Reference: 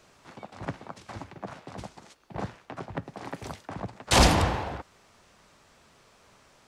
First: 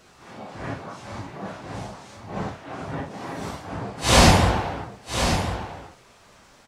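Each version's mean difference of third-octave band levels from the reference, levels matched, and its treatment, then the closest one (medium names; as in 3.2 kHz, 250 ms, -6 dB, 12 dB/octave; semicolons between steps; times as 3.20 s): 3.5 dB: phase randomisation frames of 200 ms; on a send: delay 1049 ms -8.5 dB; on the sum: trim +5.5 dB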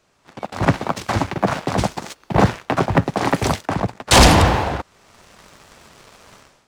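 6.0 dB: level rider gain up to 14.5 dB; waveshaping leveller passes 2; trim -1 dB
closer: first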